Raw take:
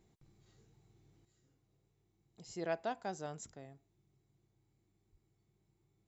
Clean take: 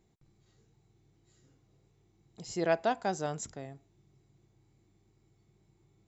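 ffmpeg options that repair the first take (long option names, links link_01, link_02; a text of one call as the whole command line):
ffmpeg -i in.wav -filter_complex "[0:a]asplit=3[link_01][link_02][link_03];[link_01]afade=type=out:start_time=5.11:duration=0.02[link_04];[link_02]highpass=frequency=140:width=0.5412,highpass=frequency=140:width=1.3066,afade=type=in:start_time=5.11:duration=0.02,afade=type=out:start_time=5.23:duration=0.02[link_05];[link_03]afade=type=in:start_time=5.23:duration=0.02[link_06];[link_04][link_05][link_06]amix=inputs=3:normalize=0,asetnsamples=nb_out_samples=441:pad=0,asendcmd='1.25 volume volume 9dB',volume=0dB" out.wav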